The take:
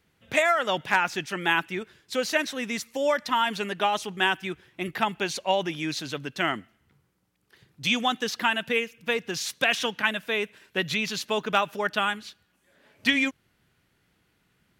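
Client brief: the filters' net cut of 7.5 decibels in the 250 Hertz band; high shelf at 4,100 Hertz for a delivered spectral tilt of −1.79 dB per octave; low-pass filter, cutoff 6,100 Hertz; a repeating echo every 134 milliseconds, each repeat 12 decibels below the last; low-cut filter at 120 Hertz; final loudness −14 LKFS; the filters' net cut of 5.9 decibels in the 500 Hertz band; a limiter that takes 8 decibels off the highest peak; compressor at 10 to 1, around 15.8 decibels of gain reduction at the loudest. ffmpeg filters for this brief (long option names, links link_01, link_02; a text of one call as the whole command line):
ffmpeg -i in.wav -af "highpass=120,lowpass=6100,equalizer=frequency=250:width_type=o:gain=-7.5,equalizer=frequency=500:width_type=o:gain=-6,highshelf=frequency=4100:gain=6,acompressor=threshold=-35dB:ratio=10,alimiter=level_in=4.5dB:limit=-24dB:level=0:latency=1,volume=-4.5dB,aecho=1:1:134|268|402:0.251|0.0628|0.0157,volume=26.5dB" out.wav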